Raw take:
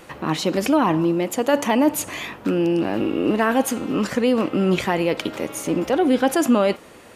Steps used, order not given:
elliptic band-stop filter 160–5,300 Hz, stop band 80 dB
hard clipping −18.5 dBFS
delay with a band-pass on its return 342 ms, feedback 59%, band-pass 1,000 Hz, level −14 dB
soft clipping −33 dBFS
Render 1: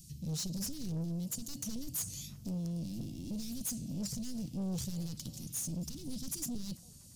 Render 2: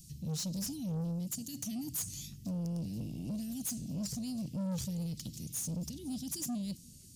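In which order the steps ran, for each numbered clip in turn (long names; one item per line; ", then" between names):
hard clipping, then elliptic band-stop filter, then soft clipping, then delay with a band-pass on its return
elliptic band-stop filter, then hard clipping, then delay with a band-pass on its return, then soft clipping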